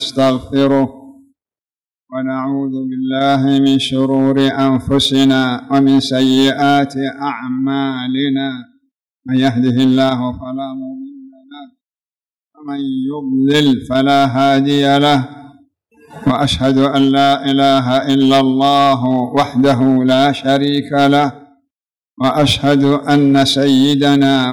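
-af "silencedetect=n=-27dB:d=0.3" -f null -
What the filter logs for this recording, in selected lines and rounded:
silence_start: 0.90
silence_end: 2.13 | silence_duration: 1.22
silence_start: 8.62
silence_end: 9.26 | silence_duration: 0.64
silence_start: 11.07
silence_end: 11.52 | silence_duration: 0.45
silence_start: 11.63
silence_end: 12.66 | silence_duration: 1.03
silence_start: 15.41
silence_end: 16.14 | silence_duration: 0.73
silence_start: 21.38
silence_end: 22.18 | silence_duration: 0.80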